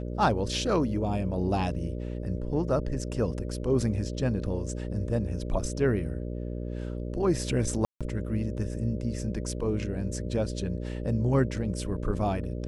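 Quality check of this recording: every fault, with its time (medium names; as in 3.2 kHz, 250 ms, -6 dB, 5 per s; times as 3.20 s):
buzz 60 Hz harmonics 10 -34 dBFS
7.85–8.01 s: dropout 156 ms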